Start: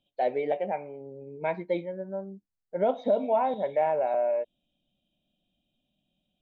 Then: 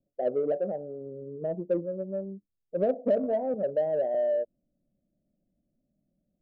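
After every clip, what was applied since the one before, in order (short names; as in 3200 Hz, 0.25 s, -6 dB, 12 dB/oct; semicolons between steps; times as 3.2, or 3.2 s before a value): steep low-pass 630 Hz 48 dB/oct; in parallel at -8 dB: soft clip -29.5 dBFS, distortion -10 dB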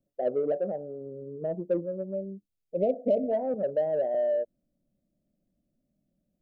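spectral delete 2.14–3.31, 770–2000 Hz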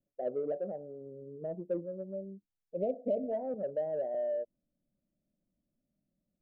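high shelf 2700 Hz -8.5 dB; gain -6.5 dB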